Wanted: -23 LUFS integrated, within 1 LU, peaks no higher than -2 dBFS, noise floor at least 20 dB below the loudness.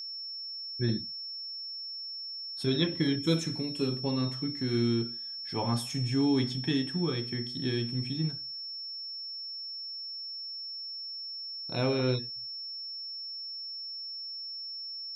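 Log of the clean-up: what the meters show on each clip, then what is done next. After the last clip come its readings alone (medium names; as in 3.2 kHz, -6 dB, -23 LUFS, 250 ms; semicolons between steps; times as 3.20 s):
steady tone 5.4 kHz; tone level -37 dBFS; loudness -32.5 LUFS; peak level -13.0 dBFS; loudness target -23.0 LUFS
-> band-stop 5.4 kHz, Q 30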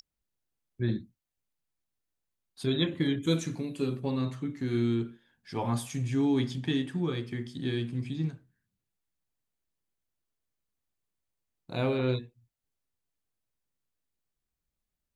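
steady tone not found; loudness -31.5 LUFS; peak level -13.5 dBFS; loudness target -23.0 LUFS
-> trim +8.5 dB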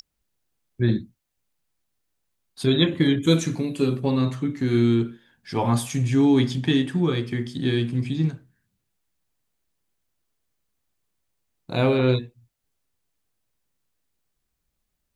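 loudness -23.0 LUFS; peak level -5.0 dBFS; noise floor -78 dBFS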